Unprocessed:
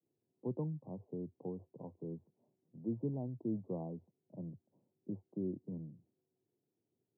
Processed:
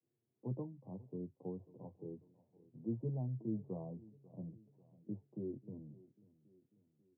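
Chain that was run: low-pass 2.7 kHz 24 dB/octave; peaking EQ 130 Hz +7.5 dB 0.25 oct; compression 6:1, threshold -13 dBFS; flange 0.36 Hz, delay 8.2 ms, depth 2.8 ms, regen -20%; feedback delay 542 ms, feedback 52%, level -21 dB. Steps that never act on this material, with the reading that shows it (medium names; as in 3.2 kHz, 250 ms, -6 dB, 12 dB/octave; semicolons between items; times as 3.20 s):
low-pass 2.7 kHz: input has nothing above 850 Hz; compression, threshold -13 dBFS: peak at its input -24.5 dBFS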